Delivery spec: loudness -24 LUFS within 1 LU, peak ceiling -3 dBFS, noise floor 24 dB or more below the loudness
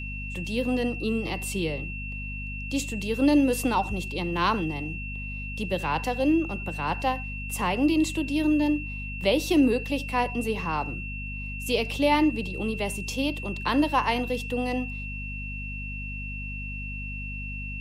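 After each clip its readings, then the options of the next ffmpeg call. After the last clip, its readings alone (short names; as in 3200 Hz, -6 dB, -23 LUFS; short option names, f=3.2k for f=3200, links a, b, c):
hum 50 Hz; harmonics up to 250 Hz; hum level -33 dBFS; steady tone 2700 Hz; tone level -36 dBFS; loudness -27.5 LUFS; peak -10.5 dBFS; loudness target -24.0 LUFS
-> -af "bandreject=f=50:t=h:w=4,bandreject=f=100:t=h:w=4,bandreject=f=150:t=h:w=4,bandreject=f=200:t=h:w=4,bandreject=f=250:t=h:w=4"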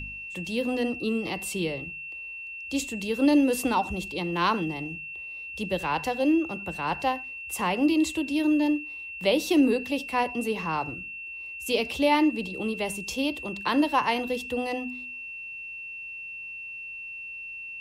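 hum none; steady tone 2700 Hz; tone level -36 dBFS
-> -af "bandreject=f=2.7k:w=30"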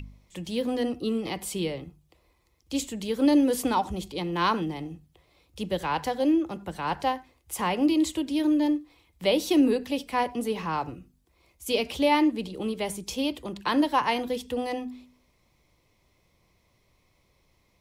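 steady tone none; loudness -27.0 LUFS; peak -11.0 dBFS; loudness target -24.0 LUFS
-> -af "volume=3dB"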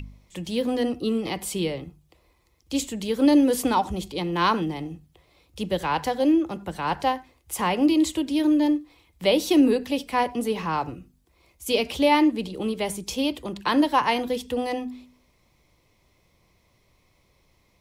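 loudness -24.0 LUFS; peak -8.0 dBFS; noise floor -65 dBFS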